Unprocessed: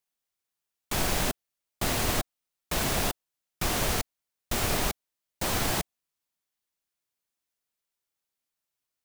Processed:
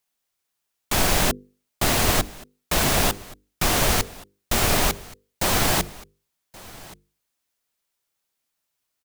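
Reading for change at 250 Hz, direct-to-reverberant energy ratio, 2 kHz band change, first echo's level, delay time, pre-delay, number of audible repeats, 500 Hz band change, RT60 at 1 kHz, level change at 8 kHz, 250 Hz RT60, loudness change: +6.5 dB, no reverb, +7.5 dB, -21.5 dB, 1126 ms, no reverb, 1, +7.0 dB, no reverb, +7.5 dB, no reverb, +7.5 dB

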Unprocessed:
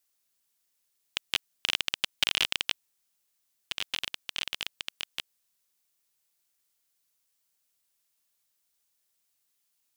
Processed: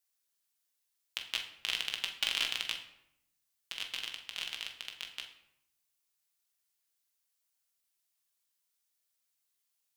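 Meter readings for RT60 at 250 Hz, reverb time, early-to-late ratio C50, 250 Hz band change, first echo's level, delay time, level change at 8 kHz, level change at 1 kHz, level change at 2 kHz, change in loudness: 1.0 s, 0.80 s, 8.5 dB, -9.0 dB, no echo, no echo, -5.0 dB, -5.5 dB, -4.5 dB, -5.0 dB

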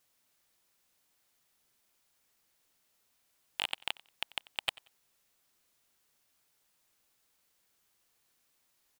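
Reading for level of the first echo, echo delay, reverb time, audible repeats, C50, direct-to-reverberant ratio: -22.0 dB, 91 ms, no reverb, 2, no reverb, no reverb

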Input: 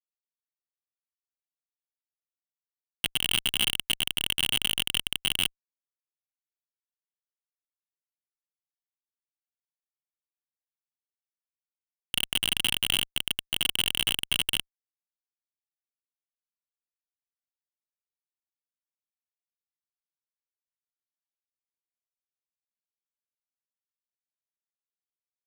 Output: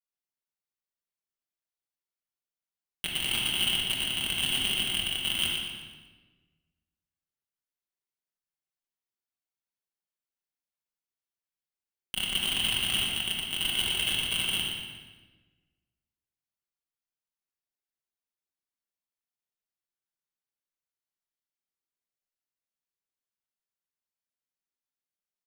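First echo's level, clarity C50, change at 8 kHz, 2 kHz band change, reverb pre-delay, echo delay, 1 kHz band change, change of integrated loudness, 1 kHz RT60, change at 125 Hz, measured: -6.0 dB, -0.5 dB, -2.0 dB, -0.5 dB, 5 ms, 119 ms, 0.0 dB, -1.0 dB, 1.2 s, +0.5 dB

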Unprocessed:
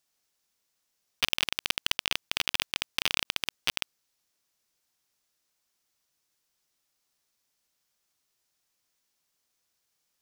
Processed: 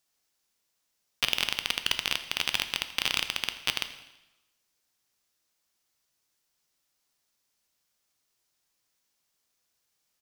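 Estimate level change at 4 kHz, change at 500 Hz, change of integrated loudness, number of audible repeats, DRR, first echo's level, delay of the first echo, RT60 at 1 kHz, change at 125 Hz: +0.5 dB, +0.5 dB, +0.5 dB, 1, 8.5 dB, -18.5 dB, 83 ms, 1.0 s, +0.5 dB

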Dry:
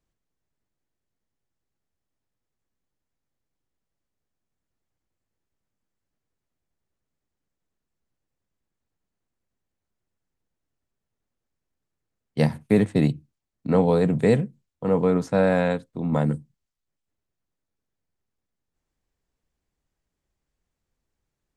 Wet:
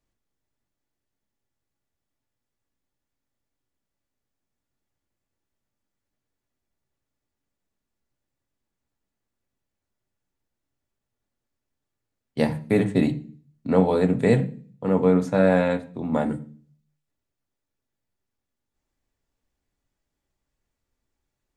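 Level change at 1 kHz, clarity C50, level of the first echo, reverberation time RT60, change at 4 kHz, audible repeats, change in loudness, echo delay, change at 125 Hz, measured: +0.5 dB, 16.5 dB, no echo, 0.45 s, -0.5 dB, no echo, 0.0 dB, no echo, -1.5 dB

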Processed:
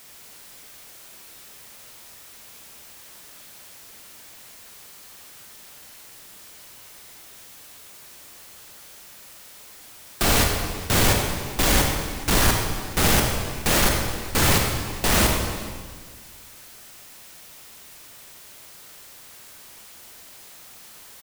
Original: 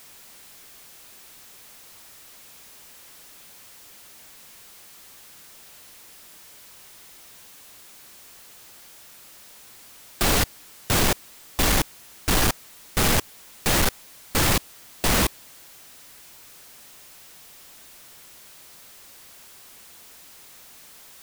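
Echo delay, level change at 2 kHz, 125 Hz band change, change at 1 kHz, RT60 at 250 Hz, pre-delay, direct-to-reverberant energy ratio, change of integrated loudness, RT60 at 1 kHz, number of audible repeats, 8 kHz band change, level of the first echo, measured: 420 ms, +2.5 dB, +4.0 dB, +2.5 dB, 2.0 s, 23 ms, 1.0 dB, +2.0 dB, 1.6 s, 1, +2.5 dB, -20.0 dB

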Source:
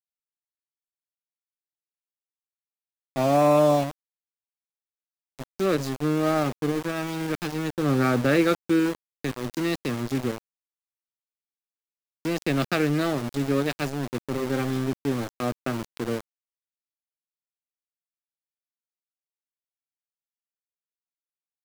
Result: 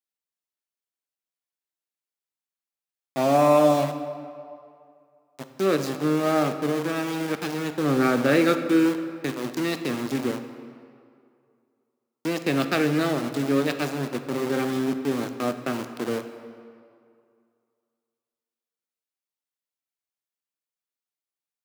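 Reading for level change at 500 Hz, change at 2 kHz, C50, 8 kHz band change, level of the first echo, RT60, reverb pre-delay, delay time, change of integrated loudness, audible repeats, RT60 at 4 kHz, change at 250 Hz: +1.5 dB, +1.5 dB, 9.0 dB, +1.5 dB, no echo, 2.3 s, 12 ms, no echo, +1.0 dB, no echo, 1.5 s, +1.5 dB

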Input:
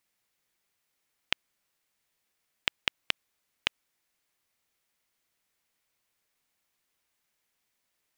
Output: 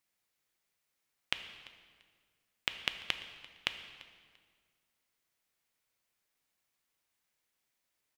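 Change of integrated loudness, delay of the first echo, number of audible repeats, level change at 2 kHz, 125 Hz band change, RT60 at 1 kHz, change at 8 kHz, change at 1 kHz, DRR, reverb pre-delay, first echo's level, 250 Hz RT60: -4.5 dB, 342 ms, 2, -4.0 dB, -3.5 dB, 1.7 s, -4.0 dB, -4.0 dB, 8.0 dB, 4 ms, -21.0 dB, 2.0 s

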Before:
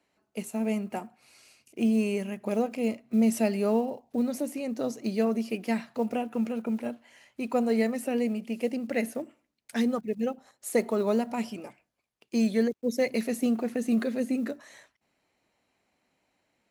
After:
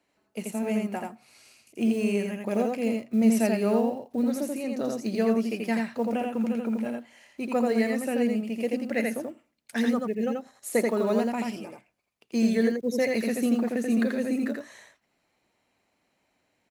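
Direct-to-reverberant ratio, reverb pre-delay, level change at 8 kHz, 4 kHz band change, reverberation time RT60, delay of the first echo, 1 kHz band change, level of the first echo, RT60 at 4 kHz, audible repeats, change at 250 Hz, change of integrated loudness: no reverb, no reverb, +2.0 dB, +2.0 dB, no reverb, 84 ms, +2.0 dB, -3.0 dB, no reverb, 1, +2.0 dB, +2.0 dB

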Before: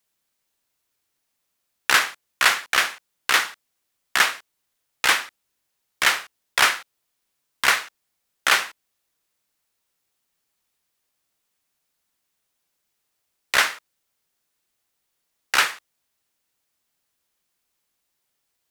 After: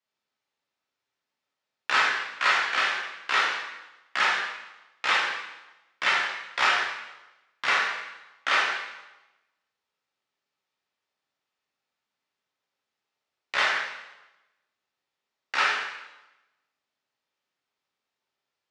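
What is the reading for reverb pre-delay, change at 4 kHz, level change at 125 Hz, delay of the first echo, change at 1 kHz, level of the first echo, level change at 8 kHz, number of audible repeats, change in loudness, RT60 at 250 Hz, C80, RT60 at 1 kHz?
6 ms, -5.5 dB, no reading, no echo, -1.5 dB, no echo, -14.0 dB, no echo, -4.5 dB, 1.0 s, 3.5 dB, 1.0 s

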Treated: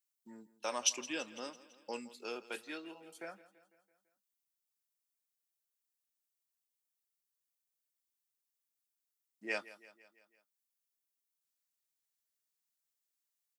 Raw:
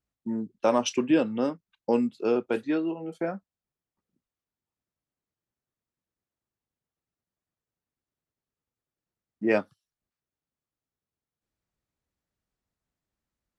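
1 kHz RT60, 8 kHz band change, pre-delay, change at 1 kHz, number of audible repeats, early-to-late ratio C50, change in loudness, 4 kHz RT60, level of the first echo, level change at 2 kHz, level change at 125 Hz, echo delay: no reverb, no reading, no reverb, -12.5 dB, 4, no reverb, -12.5 dB, no reverb, -18.0 dB, -6.0 dB, -26.5 dB, 167 ms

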